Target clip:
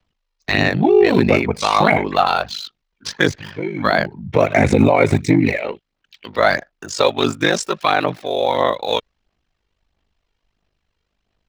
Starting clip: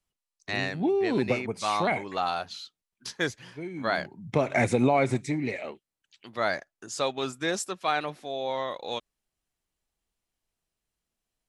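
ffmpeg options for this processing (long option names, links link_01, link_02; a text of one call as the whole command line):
ffmpeg -i in.wav -filter_complex "[0:a]acrossover=split=6500[link_01][link_02];[link_02]acompressor=threshold=-56dB:ratio=4:attack=1:release=60[link_03];[link_01][link_03]amix=inputs=2:normalize=0,acrossover=split=120|5200[link_04][link_05][link_06];[link_06]aeval=exprs='val(0)*gte(abs(val(0)),0.0015)':channel_layout=same[link_07];[link_04][link_05][link_07]amix=inputs=3:normalize=0,aeval=exprs='val(0)*sin(2*PI*25*n/s)':channel_layout=same,aphaser=in_gain=1:out_gain=1:delay=2.2:decay=0.37:speed=1.5:type=sinusoidal,alimiter=level_in=16.5dB:limit=-1dB:release=50:level=0:latency=1,volume=-1dB" out.wav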